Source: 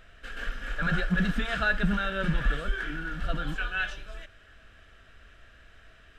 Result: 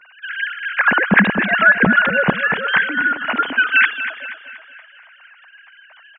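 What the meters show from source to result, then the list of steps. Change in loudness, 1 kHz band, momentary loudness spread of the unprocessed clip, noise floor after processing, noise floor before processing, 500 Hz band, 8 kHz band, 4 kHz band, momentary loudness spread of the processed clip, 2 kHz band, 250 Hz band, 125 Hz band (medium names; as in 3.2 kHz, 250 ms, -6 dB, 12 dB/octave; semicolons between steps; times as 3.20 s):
+14.5 dB, +16.0 dB, 12 LU, -48 dBFS, -56 dBFS, +12.5 dB, no reading, +11.5 dB, 12 LU, +17.0 dB, +10.5 dB, +4.5 dB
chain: formants replaced by sine waves; treble shelf 2.5 kHz +9 dB; on a send: feedback delay 239 ms, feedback 47%, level -11.5 dB; on the sum: loudness maximiser +10.5 dB; trim -1 dB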